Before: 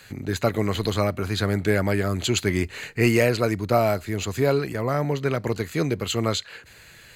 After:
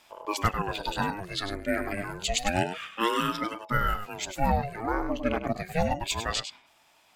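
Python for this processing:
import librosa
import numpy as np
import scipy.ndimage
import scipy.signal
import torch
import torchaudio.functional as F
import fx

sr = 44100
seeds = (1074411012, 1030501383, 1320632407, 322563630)

p1 = fx.rider(x, sr, range_db=10, speed_s=0.5)
p2 = fx.noise_reduce_blind(p1, sr, reduce_db=12)
p3 = p2 + fx.echo_single(p2, sr, ms=100, db=-9.0, dry=0)
y = fx.ring_lfo(p3, sr, carrier_hz=470.0, swing_pct=65, hz=0.29)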